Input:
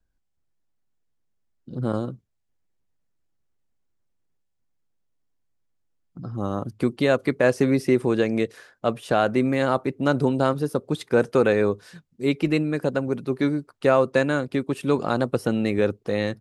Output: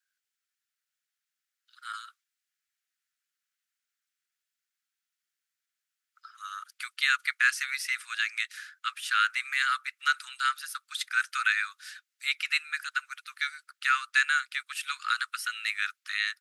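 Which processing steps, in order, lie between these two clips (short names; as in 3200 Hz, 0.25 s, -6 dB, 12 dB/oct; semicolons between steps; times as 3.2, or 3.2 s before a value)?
steep high-pass 1300 Hz 72 dB/oct; gain +5 dB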